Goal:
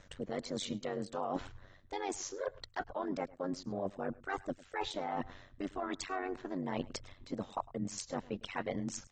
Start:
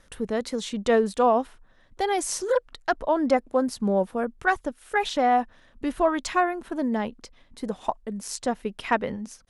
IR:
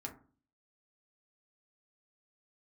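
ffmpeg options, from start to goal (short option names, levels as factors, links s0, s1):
-af "alimiter=limit=0.178:level=0:latency=1:release=234,areverse,acompressor=threshold=0.0141:ratio=10,areverse,tremolo=f=91:d=0.889,aecho=1:1:109:0.0841,asetrate=45938,aresample=44100,volume=1.88" -ar 32000 -c:a aac -b:a 24k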